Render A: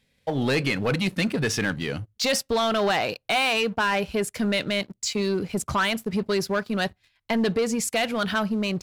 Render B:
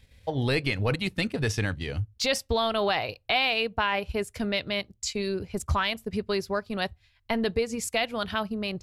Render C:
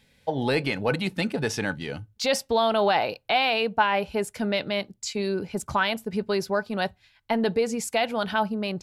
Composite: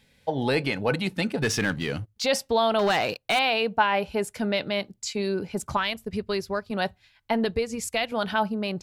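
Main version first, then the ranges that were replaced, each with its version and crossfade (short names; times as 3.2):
C
1.42–2.16 from A
2.79–3.39 from A
5.77–6.71 from B
7.45–8.12 from B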